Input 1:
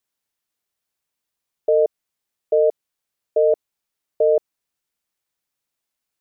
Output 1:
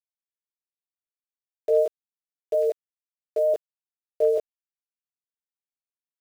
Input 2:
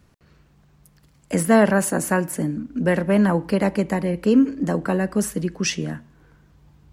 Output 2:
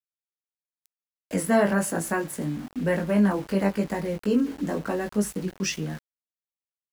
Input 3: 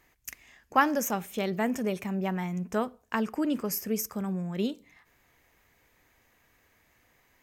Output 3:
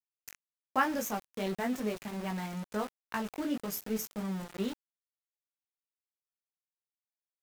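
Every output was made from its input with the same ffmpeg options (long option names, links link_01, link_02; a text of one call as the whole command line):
ffmpeg -i in.wav -af "flanger=delay=18.5:depth=2.5:speed=1,aeval=exprs='val(0)*gte(abs(val(0)),0.0141)':channel_layout=same,volume=-2dB" out.wav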